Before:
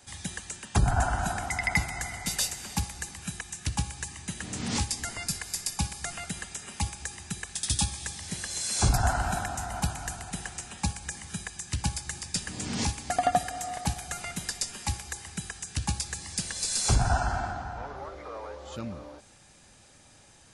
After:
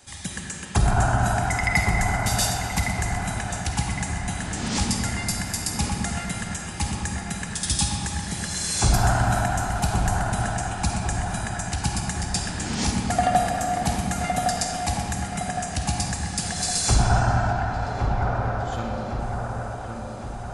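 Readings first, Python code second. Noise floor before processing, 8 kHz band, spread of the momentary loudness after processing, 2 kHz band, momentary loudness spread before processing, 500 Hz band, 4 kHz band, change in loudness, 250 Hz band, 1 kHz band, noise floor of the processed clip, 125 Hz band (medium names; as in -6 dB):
-56 dBFS, +4.0 dB, 8 LU, +6.5 dB, 12 LU, +8.0 dB, +4.5 dB, +6.0 dB, +8.5 dB, +7.5 dB, -34 dBFS, +8.0 dB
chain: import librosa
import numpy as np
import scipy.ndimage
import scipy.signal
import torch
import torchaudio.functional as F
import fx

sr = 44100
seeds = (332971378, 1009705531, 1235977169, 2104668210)

y = fx.echo_wet_lowpass(x, sr, ms=1112, feedback_pct=53, hz=1900.0, wet_db=-4.5)
y = fx.rev_freeverb(y, sr, rt60_s=3.3, hf_ratio=0.35, predelay_ms=10, drr_db=0.5)
y = y * librosa.db_to_amplitude(3.0)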